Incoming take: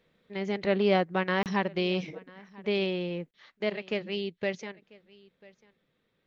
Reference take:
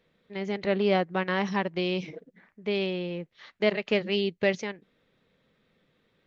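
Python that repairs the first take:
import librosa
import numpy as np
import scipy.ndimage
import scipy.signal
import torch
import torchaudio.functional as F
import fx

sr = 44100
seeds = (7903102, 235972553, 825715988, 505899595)

y = fx.fix_interpolate(x, sr, at_s=(1.43, 3.31), length_ms=28.0)
y = fx.fix_echo_inverse(y, sr, delay_ms=993, level_db=-23.5)
y = fx.gain(y, sr, db=fx.steps((0.0, 0.0), (3.33, 6.0)))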